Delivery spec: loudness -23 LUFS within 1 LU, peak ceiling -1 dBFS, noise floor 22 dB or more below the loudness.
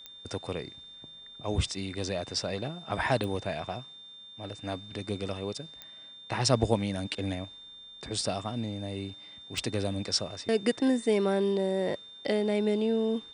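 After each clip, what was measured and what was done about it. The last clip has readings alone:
clicks found 4; steady tone 3.6 kHz; tone level -46 dBFS; loudness -31.0 LUFS; peak level -9.5 dBFS; loudness target -23.0 LUFS
-> de-click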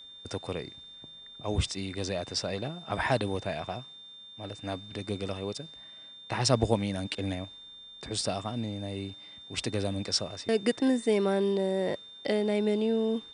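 clicks found 0; steady tone 3.6 kHz; tone level -46 dBFS
-> band-stop 3.6 kHz, Q 30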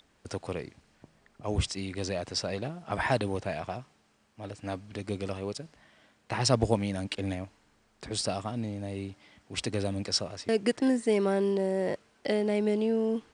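steady tone not found; loudness -31.0 LUFS; peak level -9.5 dBFS; loudness target -23.0 LUFS
-> trim +8 dB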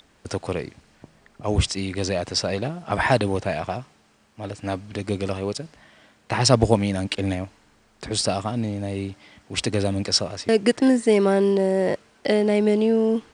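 loudness -23.0 LUFS; peak level -1.5 dBFS; noise floor -59 dBFS

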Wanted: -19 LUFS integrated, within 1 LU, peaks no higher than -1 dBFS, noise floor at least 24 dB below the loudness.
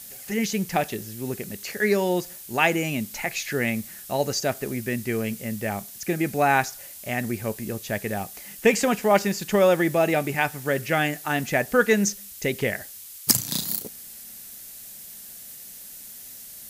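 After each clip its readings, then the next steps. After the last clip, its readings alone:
noise floor -42 dBFS; noise floor target -49 dBFS; loudness -24.5 LUFS; peak level -2.5 dBFS; loudness target -19.0 LUFS
-> noise reduction 7 dB, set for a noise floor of -42 dBFS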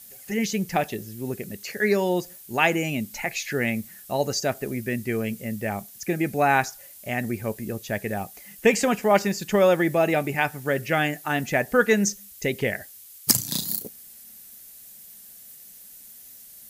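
noise floor -46 dBFS; noise floor target -49 dBFS
-> noise reduction 6 dB, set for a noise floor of -46 dBFS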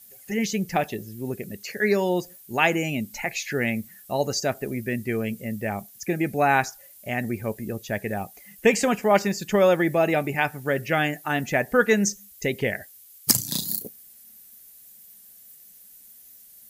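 noise floor -50 dBFS; loudness -25.0 LUFS; peak level -2.5 dBFS; loudness target -19.0 LUFS
-> trim +6 dB; peak limiter -1 dBFS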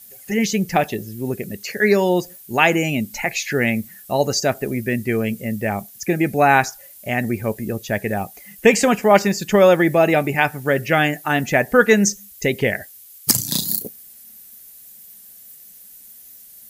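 loudness -19.0 LUFS; peak level -1.0 dBFS; noise floor -44 dBFS

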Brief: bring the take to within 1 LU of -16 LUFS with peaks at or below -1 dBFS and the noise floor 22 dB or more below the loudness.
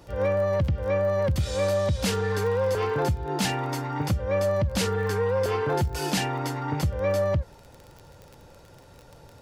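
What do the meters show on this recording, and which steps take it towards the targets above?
tick rate 25 per s; loudness -26.0 LUFS; peak level -15.5 dBFS; loudness target -16.0 LUFS
-> de-click; trim +10 dB

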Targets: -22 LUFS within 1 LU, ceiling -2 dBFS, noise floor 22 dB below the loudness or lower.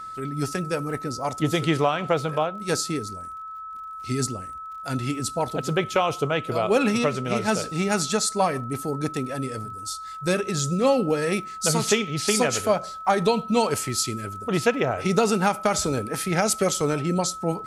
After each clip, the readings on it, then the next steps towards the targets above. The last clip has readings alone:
tick rate 42 per s; steady tone 1.3 kHz; tone level -34 dBFS; loudness -24.5 LUFS; peak level -7.5 dBFS; loudness target -22.0 LUFS
-> de-click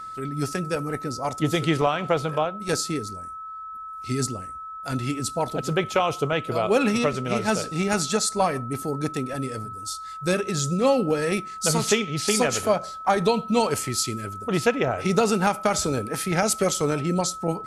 tick rate 0 per s; steady tone 1.3 kHz; tone level -34 dBFS
-> band-stop 1.3 kHz, Q 30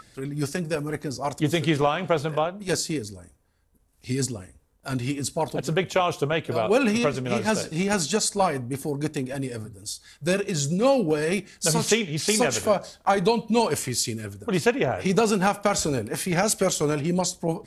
steady tone not found; loudness -24.5 LUFS; peak level -8.0 dBFS; loudness target -22.0 LUFS
-> trim +2.5 dB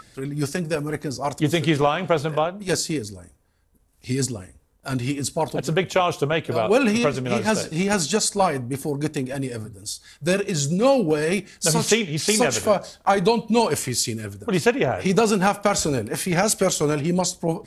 loudness -22.0 LUFS; peak level -5.5 dBFS; noise floor -60 dBFS

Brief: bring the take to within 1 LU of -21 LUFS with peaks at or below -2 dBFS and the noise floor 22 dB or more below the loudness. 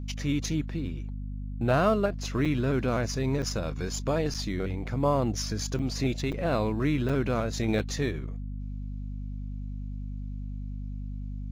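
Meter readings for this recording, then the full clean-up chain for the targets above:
dropouts 7; longest dropout 6.2 ms; hum 50 Hz; highest harmonic 250 Hz; hum level -33 dBFS; loudness -30.0 LUFS; peak level -12.5 dBFS; loudness target -21.0 LUFS
-> interpolate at 2.45/3.42/4.34/5.79/6.32/7.09/7.79 s, 6.2 ms; hum notches 50/100/150/200/250 Hz; trim +9 dB

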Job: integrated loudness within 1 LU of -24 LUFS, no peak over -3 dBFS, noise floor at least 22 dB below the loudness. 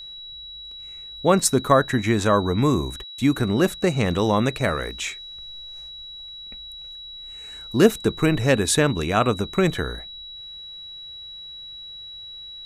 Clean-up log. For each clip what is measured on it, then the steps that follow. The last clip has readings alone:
steady tone 3.9 kHz; tone level -36 dBFS; loudness -21.0 LUFS; peak level -2.0 dBFS; loudness target -24.0 LUFS
-> band-stop 3.9 kHz, Q 30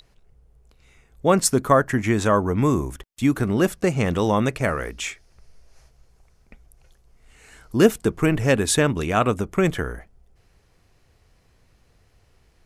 steady tone not found; loudness -21.5 LUFS; peak level -2.0 dBFS; loudness target -24.0 LUFS
-> trim -2.5 dB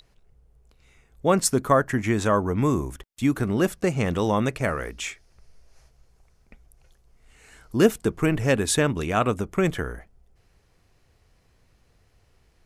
loudness -24.0 LUFS; peak level -4.5 dBFS; noise floor -63 dBFS

